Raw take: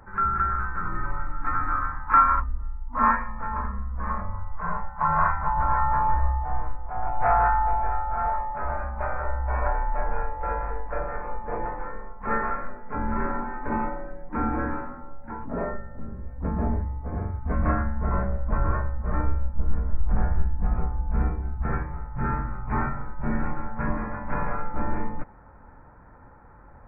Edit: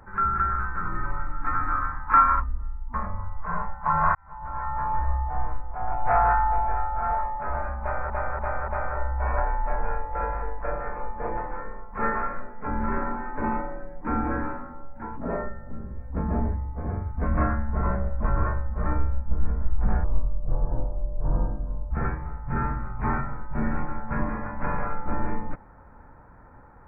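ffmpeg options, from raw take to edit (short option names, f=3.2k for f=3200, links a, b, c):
-filter_complex "[0:a]asplit=8[a][b][c][d][e][f][g][h];[a]atrim=end=2.942[i];[b]atrim=start=4.088:end=5.3,asetpts=PTS-STARTPTS,afade=t=out:st=1.208:d=0.004:c=hsin[j];[c]atrim=start=5.3:end=9.252,asetpts=PTS-STARTPTS,afade=t=in:d=1.2[k];[d]atrim=start=8.958:end=9.252[l];[e]atrim=start=8.958:end=9.252[m];[f]atrim=start=8.958:end=20.324[n];[g]atrim=start=20.32:end=21.59,asetpts=PTS-STARTPTS,asetrate=29988,aresample=44100,atrim=end_sample=82363,asetpts=PTS-STARTPTS[o];[h]atrim=start=21.586[p];[j][k]concat=n=2:v=0:a=1[q];[i][q]acrossfade=d=0.004:c1=hsin:c2=hsin[r];[r][l]acrossfade=d=0.004:c1=hsin:c2=hsin[s];[s][m]acrossfade=d=0.004:c1=hsin:c2=hsin[t];[t][n]acrossfade=d=0.004:c1=hsin:c2=hsin[u];[u][o]acrossfade=d=0.004:c1=hsin:c2=hsin[v];[v][p]acrossfade=d=0.004:c1=hsin:c2=hsin"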